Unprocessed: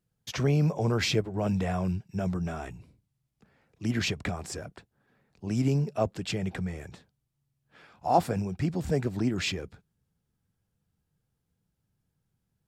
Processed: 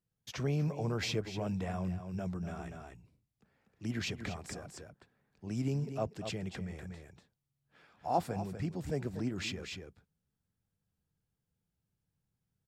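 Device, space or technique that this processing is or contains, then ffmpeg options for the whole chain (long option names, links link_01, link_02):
ducked delay: -filter_complex "[0:a]asplit=3[link_01][link_02][link_03];[link_02]adelay=242,volume=-4.5dB[link_04];[link_03]apad=whole_len=569618[link_05];[link_04][link_05]sidechaincompress=threshold=-36dB:ratio=4:attack=22:release=218[link_06];[link_01][link_06]amix=inputs=2:normalize=0,volume=-8dB"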